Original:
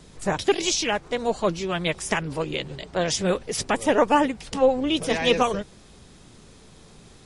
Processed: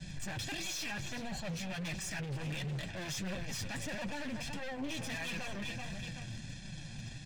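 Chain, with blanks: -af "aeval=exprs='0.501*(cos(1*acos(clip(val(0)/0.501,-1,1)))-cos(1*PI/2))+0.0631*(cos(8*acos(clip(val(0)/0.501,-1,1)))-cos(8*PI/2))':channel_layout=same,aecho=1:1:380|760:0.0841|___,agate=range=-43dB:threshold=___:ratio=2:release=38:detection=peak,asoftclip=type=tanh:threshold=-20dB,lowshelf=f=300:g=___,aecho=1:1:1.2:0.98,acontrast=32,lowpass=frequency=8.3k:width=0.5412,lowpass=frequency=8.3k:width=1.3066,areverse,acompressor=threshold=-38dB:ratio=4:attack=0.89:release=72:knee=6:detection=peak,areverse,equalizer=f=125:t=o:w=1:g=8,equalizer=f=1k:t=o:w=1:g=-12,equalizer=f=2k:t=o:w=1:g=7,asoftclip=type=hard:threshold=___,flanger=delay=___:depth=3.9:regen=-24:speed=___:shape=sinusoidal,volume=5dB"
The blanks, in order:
0.0286, -42dB, -3, -38dB, 5.2, 1.5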